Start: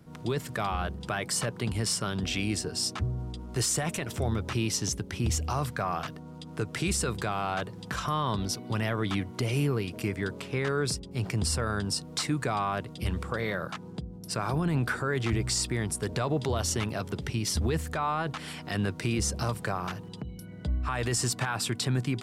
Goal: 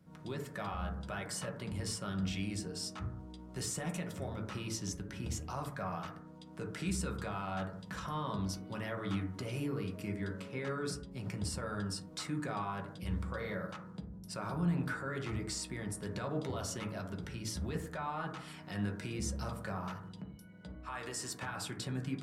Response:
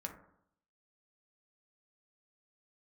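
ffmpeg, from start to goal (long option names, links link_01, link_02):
-filter_complex "[0:a]asettb=1/sr,asplit=3[link_01][link_02][link_03];[link_01]atrim=end=20.264[link_04];[link_02]atrim=start=20.26:end=21.43,asetpts=PTS-STARTPTS,afade=type=in:duration=0.004:curve=qsin,afade=type=out:start_time=1.166:duration=0.004:curve=qsin,lowshelf=frequency=180:gain=-12[link_05];[link_03]atrim=start=21.426[link_06];[link_04][link_05]acrossfade=duration=0.004:curve1=hsin:curve2=qsin[link_07];[link_07][link_06]acrossfade=duration=0.004:curve1=qsin:curve2=hsin[link_08];[1:a]atrim=start_sample=2205,afade=type=out:start_time=0.28:duration=0.01,atrim=end_sample=12789[link_09];[link_08][link_09]afir=irnorm=-1:irlink=0,volume=-7.5dB"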